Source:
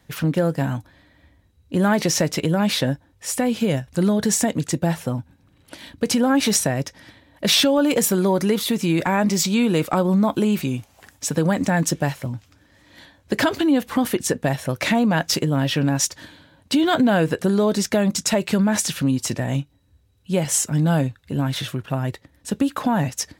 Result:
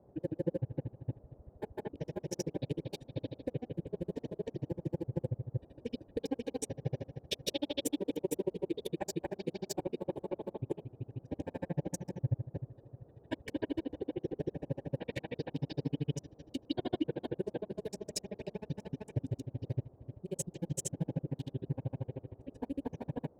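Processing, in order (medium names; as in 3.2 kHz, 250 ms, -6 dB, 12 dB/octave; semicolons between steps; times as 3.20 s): local Wiener filter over 41 samples; bass shelf 340 Hz +12 dB; compression, threshold -19 dBFS, peak gain reduction 11.5 dB; static phaser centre 510 Hz, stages 4; comb of notches 680 Hz; spring tank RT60 1.3 s, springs 41 ms, chirp 35 ms, DRR -3 dB; granulator 41 ms, grains 13 per s, spray 321 ms, pitch spread up and down by 0 st; band noise 47–610 Hz -57 dBFS; trim -5.5 dB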